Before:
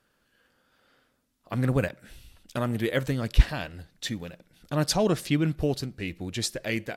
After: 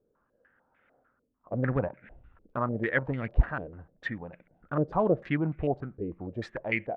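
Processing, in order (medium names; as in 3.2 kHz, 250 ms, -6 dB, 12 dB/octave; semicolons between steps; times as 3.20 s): local Wiener filter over 9 samples; step-sequenced low-pass 6.7 Hz 450–2200 Hz; trim -4.5 dB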